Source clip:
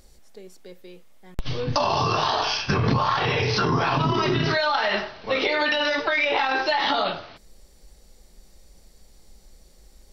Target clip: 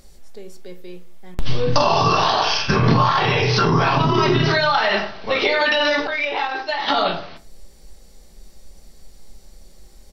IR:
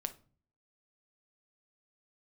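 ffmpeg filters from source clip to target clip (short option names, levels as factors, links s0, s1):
-filter_complex "[0:a]asplit=3[s0][s1][s2];[s0]afade=t=out:st=1.63:d=0.02[s3];[s1]asplit=2[s4][s5];[s5]adelay=49,volume=0.376[s6];[s4][s6]amix=inputs=2:normalize=0,afade=t=in:st=1.63:d=0.02,afade=t=out:st=2.98:d=0.02[s7];[s2]afade=t=in:st=2.98:d=0.02[s8];[s3][s7][s8]amix=inputs=3:normalize=0,asettb=1/sr,asplit=3[s9][s10][s11];[s9]atrim=end=6.074[s12];[s10]atrim=start=6.07:end=6.88,asetpts=PTS-STARTPTS,afade=t=in:d=0.004:c=qsin,afade=t=out:st=0.806:d=0.004:c=qsin,agate=range=0.0224:threshold=0.158:ratio=3:detection=peak[s13];[s11]atrim=start=6.876[s14];[s12][s13]acrossfade=d=0.004:c1=hsin:c2=qsin[s15];[s15][s14]acrossfade=d=0.004:c1=qsin:c2=hsin[s16];[1:a]atrim=start_sample=2205,asetrate=52920,aresample=44100[s17];[s16][s17]afir=irnorm=-1:irlink=0,volume=2.24"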